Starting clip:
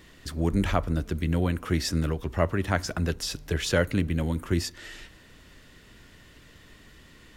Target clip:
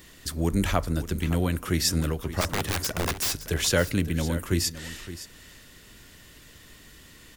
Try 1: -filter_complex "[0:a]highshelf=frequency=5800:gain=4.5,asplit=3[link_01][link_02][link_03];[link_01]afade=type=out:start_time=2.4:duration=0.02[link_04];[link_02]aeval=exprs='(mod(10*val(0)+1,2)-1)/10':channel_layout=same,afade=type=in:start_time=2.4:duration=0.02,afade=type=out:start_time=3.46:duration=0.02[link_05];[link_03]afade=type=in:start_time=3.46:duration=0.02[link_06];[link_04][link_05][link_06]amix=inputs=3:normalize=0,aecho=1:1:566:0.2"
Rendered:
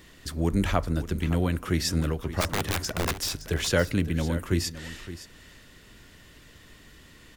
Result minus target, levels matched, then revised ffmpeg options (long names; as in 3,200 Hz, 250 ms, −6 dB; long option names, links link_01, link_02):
8,000 Hz band −3.5 dB
-filter_complex "[0:a]highshelf=frequency=5800:gain=13.5,asplit=3[link_01][link_02][link_03];[link_01]afade=type=out:start_time=2.4:duration=0.02[link_04];[link_02]aeval=exprs='(mod(10*val(0)+1,2)-1)/10':channel_layout=same,afade=type=in:start_time=2.4:duration=0.02,afade=type=out:start_time=3.46:duration=0.02[link_05];[link_03]afade=type=in:start_time=3.46:duration=0.02[link_06];[link_04][link_05][link_06]amix=inputs=3:normalize=0,aecho=1:1:566:0.2"